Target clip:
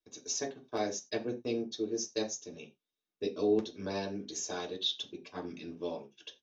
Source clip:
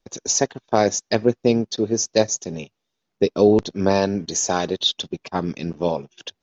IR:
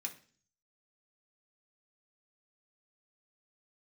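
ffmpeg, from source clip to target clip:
-filter_complex "[0:a]asettb=1/sr,asplit=3[link_01][link_02][link_03];[link_01]atrim=end=0.774[link_04];[link_02]atrim=start=0.77:end=2.32,asetpts=PTS-STARTPTS,afade=type=in:duration=0.004:curve=qsin,afade=type=out:start_time=1.546:duration=0.004:curve=qsin,agate=range=-12dB:threshold=-30dB:ratio=16:detection=peak[link_05];[link_03]atrim=start=2.316[link_06];[link_04][link_05]acrossfade=duration=0.004:curve1=hsin:curve2=qsin[link_07];[link_07][link_06]acrossfade=duration=0.004:curve1=qsin:curve2=hsin[link_08];[1:a]atrim=start_sample=2205,afade=type=out:start_time=0.22:duration=0.01,atrim=end_sample=10143,asetrate=66150,aresample=44100[link_09];[link_08][link_09]afir=irnorm=-1:irlink=0,volume=-8dB"

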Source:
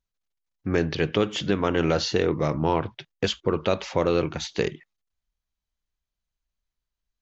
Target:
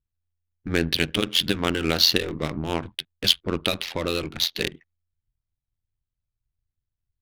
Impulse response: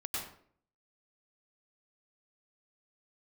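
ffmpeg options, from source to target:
-af "equalizer=frequency=125:width_type=o:width=1:gain=-8,equalizer=frequency=500:width_type=o:width=1:gain=-8,equalizer=frequency=1000:width_type=o:width=1:gain=-7,equalizer=frequency=4000:width_type=o:width=1:gain=10,adynamicsmooth=sensitivity=5.5:basefreq=1100,tremolo=f=85:d=0.857,volume=6.5dB"

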